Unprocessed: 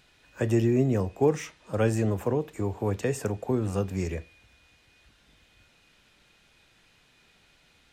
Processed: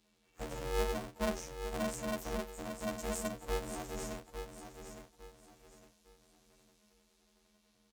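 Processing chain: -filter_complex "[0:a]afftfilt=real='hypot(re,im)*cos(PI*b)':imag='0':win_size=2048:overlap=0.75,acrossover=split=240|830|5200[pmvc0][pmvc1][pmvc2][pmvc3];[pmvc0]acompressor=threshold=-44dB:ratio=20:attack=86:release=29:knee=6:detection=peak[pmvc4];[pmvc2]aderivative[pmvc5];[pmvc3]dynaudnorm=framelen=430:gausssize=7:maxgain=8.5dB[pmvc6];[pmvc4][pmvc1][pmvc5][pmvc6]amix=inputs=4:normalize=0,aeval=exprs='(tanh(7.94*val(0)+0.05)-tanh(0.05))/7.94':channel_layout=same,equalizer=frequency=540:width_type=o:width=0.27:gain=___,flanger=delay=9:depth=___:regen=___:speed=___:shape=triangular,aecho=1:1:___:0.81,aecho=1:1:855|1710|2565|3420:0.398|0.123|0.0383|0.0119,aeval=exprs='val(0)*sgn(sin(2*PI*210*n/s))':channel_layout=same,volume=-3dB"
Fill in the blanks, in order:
-7, 4.4, -52, 0.91, 7.3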